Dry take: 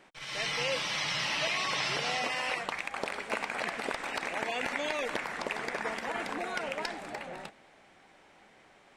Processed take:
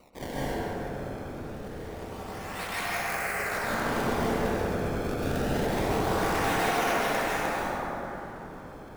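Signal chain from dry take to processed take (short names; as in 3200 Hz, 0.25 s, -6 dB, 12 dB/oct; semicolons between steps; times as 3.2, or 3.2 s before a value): high shelf 2600 Hz +12 dB; negative-ratio compressor -34 dBFS, ratio -0.5; decimation with a swept rate 26×, swing 160% 0.26 Hz; 2.87–3.39 fixed phaser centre 950 Hz, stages 6; darkening echo 0.101 s, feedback 72%, low-pass 2600 Hz, level -5 dB; plate-style reverb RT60 3.7 s, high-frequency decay 0.35×, pre-delay 0.12 s, DRR -8.5 dB; gain -6 dB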